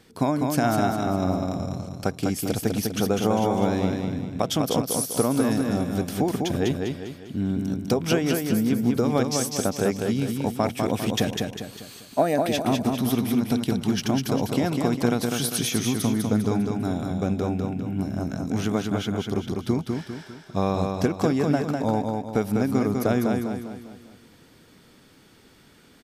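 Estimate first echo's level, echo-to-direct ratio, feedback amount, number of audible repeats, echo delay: -4.0 dB, -3.0 dB, 43%, 5, 0.2 s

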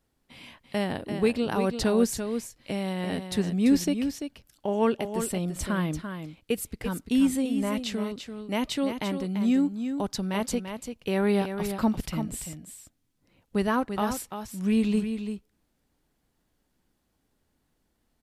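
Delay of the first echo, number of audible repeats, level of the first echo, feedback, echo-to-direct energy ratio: 0.34 s, 1, -8.0 dB, no steady repeat, -8.0 dB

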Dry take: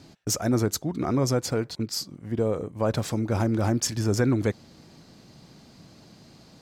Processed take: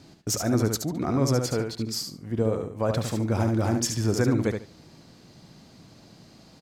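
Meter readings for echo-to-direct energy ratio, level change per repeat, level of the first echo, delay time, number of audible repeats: -6.0 dB, -14.5 dB, -6.0 dB, 72 ms, 3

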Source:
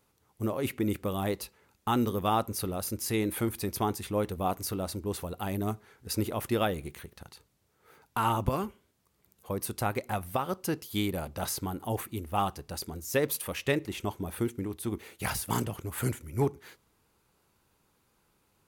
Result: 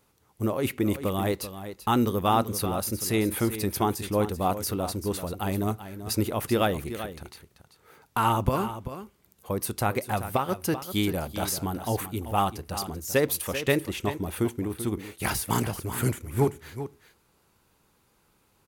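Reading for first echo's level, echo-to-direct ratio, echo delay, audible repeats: -11.5 dB, -11.5 dB, 0.387 s, 1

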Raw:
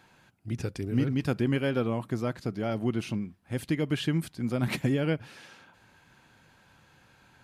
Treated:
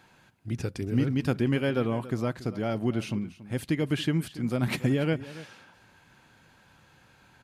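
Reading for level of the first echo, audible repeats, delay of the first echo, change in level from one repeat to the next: -16.5 dB, 1, 0.282 s, no steady repeat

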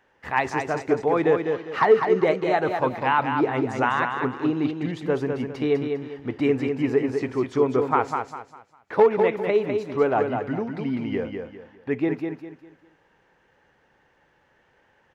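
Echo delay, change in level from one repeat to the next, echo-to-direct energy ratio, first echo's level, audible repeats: 0.201 s, -10.0 dB, -5.0 dB, -5.5 dB, 3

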